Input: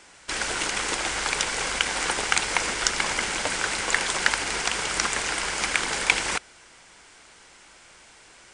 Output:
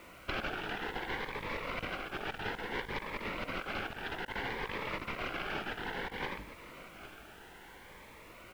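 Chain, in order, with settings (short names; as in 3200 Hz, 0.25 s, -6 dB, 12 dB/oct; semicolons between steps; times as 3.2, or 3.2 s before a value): tracing distortion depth 0.09 ms; LPF 3500 Hz 24 dB/oct; high shelf 2200 Hz -10.5 dB; notches 50/100/150/200/250/300/350 Hz; negative-ratio compressor -36 dBFS, ratio -0.5; bit-crush 10-bit; echo 0.807 s -13.5 dB; cascading phaser rising 0.6 Hz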